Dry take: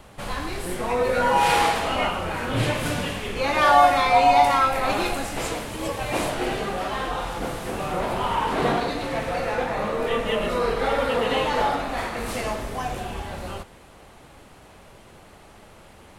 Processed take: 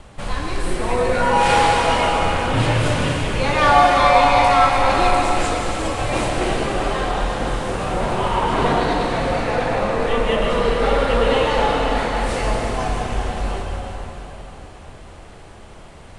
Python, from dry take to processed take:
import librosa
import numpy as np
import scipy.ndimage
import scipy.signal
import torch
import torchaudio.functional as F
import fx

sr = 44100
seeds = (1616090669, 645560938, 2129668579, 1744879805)

y = scipy.signal.sosfilt(scipy.signal.butter(8, 10000.0, 'lowpass', fs=sr, output='sos'), x)
y = fx.low_shelf(y, sr, hz=86.0, db=8.5)
y = fx.rev_plate(y, sr, seeds[0], rt60_s=4.4, hf_ratio=0.85, predelay_ms=115, drr_db=1.0)
y = y * librosa.db_to_amplitude(2.0)